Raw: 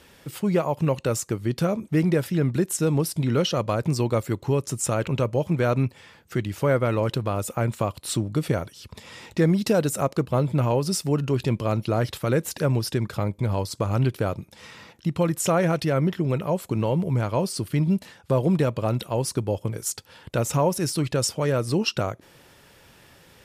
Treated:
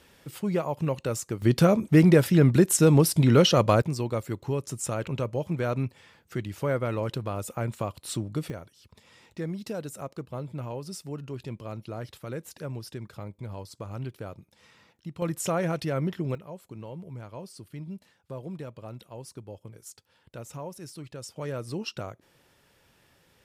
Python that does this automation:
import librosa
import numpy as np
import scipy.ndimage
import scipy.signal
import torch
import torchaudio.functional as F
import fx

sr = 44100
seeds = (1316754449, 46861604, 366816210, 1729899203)

y = fx.gain(x, sr, db=fx.steps((0.0, -5.0), (1.42, 4.0), (3.82, -6.0), (8.5, -13.5), (15.22, -6.0), (16.35, -17.0), (21.36, -10.5)))